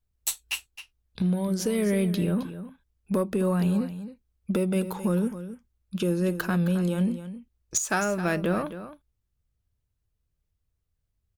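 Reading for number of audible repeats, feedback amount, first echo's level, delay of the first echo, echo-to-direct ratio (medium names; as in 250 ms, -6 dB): 1, no regular repeats, -12.5 dB, 265 ms, -12.5 dB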